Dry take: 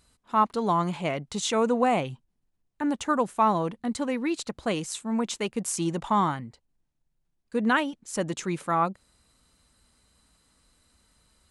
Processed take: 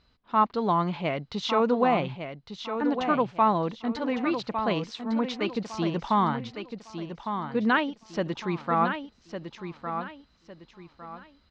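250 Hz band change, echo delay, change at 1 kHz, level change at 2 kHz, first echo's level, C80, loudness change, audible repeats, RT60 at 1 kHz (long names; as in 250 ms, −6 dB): +0.5 dB, 1,156 ms, +0.5 dB, +0.5 dB, −8.0 dB, no reverb audible, −0.5 dB, 3, no reverb audible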